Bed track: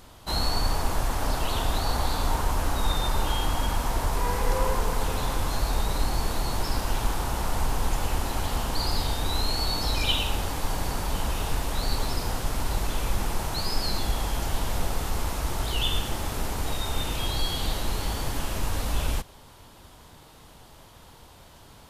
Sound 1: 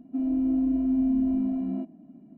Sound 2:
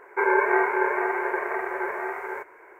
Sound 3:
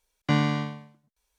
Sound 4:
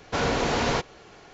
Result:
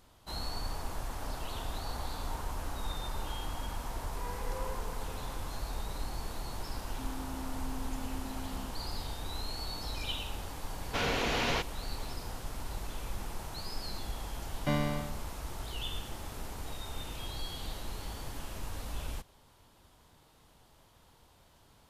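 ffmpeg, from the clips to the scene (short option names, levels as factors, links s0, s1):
-filter_complex "[0:a]volume=0.251[s0];[1:a]acompressor=threshold=0.0355:ratio=6:attack=3.2:release=140:knee=1:detection=peak[s1];[4:a]equalizer=f=2800:t=o:w=1.2:g=8[s2];[3:a]equalizer=f=590:t=o:w=0.35:g=8.5[s3];[s1]atrim=end=2.37,asetpts=PTS-STARTPTS,volume=0.224,afade=t=in:d=0.004:c=hsin,afade=t=out:st=2.366:d=0.004:c=hsin,adelay=6850[s4];[s2]atrim=end=1.33,asetpts=PTS-STARTPTS,volume=0.376,afade=t=in:d=0.004:c=hsin,afade=t=out:st=1.326:d=0.004:c=hsin,adelay=10810[s5];[s3]atrim=end=1.38,asetpts=PTS-STARTPTS,volume=0.376,afade=t=in:d=0.004:c=hsin,afade=t=out:st=1.376:d=0.004:c=hsin,adelay=14380[s6];[s0][s4][s5][s6]amix=inputs=4:normalize=0"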